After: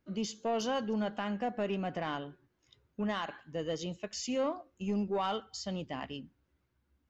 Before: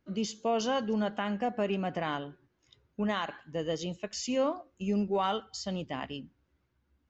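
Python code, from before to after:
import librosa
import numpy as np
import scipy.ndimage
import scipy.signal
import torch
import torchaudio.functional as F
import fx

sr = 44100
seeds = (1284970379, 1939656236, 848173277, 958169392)

y = 10.0 ** (-21.5 / 20.0) * np.tanh(x / 10.0 ** (-21.5 / 20.0))
y = y * librosa.db_to_amplitude(-2.0)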